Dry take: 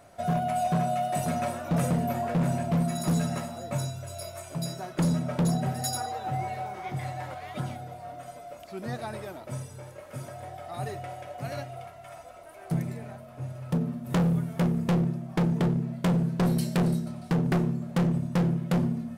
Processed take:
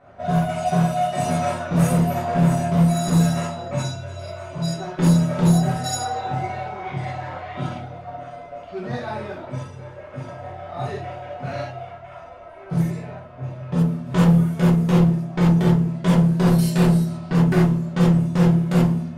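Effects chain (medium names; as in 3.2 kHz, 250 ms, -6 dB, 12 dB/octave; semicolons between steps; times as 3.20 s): gated-style reverb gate 110 ms flat, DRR -8 dB; level-controlled noise filter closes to 2.1 kHz, open at -13.5 dBFS; trim -1.5 dB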